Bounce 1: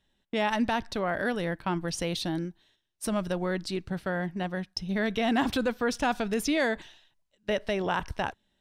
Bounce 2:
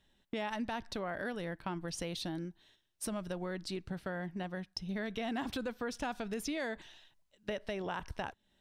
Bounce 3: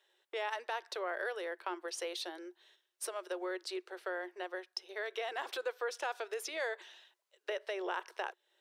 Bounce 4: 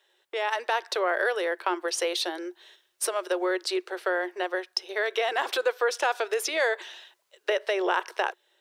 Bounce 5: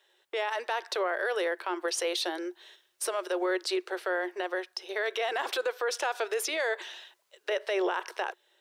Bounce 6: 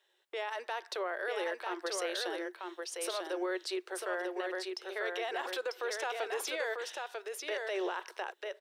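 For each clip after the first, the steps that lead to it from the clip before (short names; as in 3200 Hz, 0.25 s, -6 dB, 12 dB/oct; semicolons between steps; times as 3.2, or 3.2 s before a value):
compressor 2.5:1, threshold -42 dBFS, peak gain reduction 13.5 dB; gain +1.5 dB
rippled Chebyshev high-pass 350 Hz, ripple 3 dB; gain +3 dB
AGC gain up to 6 dB; gain +6 dB
limiter -21 dBFS, peak gain reduction 9 dB
echo 0.944 s -4 dB; gain -6.5 dB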